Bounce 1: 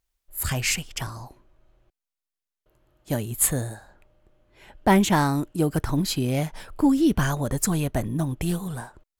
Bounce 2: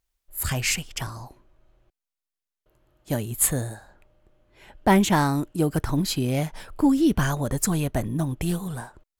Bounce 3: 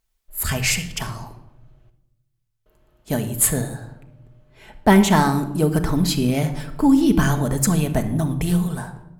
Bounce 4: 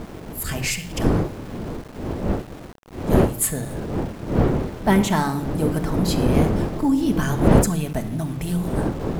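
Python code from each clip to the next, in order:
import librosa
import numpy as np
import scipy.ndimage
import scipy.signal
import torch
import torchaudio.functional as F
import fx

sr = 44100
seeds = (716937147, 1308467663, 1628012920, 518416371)

y1 = x
y2 = fx.room_shoebox(y1, sr, seeds[0], volume_m3=3200.0, walls='furnished', distance_m=1.5)
y2 = y2 * 10.0 ** (3.0 / 20.0)
y3 = fx.dmg_wind(y2, sr, seeds[1], corner_hz=330.0, level_db=-19.0)
y3 = np.where(np.abs(y3) >= 10.0 ** (-33.0 / 20.0), y3, 0.0)
y3 = y3 * 10.0 ** (-4.5 / 20.0)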